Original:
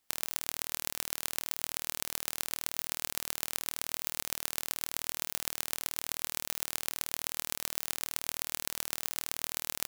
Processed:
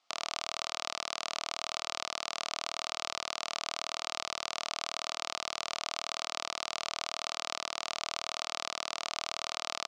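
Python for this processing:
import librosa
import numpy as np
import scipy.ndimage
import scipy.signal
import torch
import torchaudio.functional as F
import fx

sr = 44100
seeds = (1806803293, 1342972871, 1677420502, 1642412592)

p1 = fx.low_shelf(x, sr, hz=460.0, db=-9.5)
p2 = fx.over_compress(p1, sr, threshold_db=-40.0, ratio=-1.0)
p3 = p1 + (p2 * librosa.db_to_amplitude(0.0))
y = fx.cabinet(p3, sr, low_hz=210.0, low_slope=12, high_hz=5600.0, hz=(420.0, 670.0, 1200.0, 1700.0), db=(-6, 10, 9, -9))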